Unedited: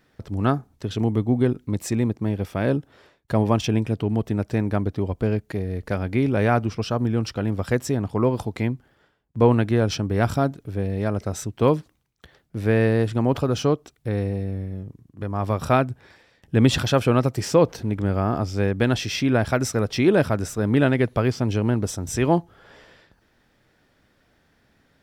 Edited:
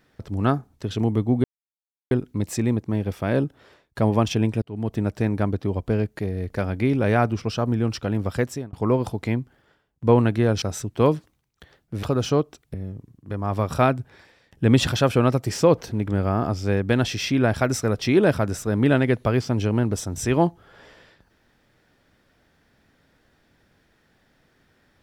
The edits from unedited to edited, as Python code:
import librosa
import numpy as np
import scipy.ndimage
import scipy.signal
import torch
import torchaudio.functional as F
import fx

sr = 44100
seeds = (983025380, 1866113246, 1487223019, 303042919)

y = fx.edit(x, sr, fx.insert_silence(at_s=1.44, length_s=0.67),
    fx.fade_in_span(start_s=3.95, length_s=0.34),
    fx.fade_out_span(start_s=7.58, length_s=0.48, curve='qsin'),
    fx.cut(start_s=9.95, length_s=1.29),
    fx.cut(start_s=12.65, length_s=0.71),
    fx.cut(start_s=14.07, length_s=0.58), tone=tone)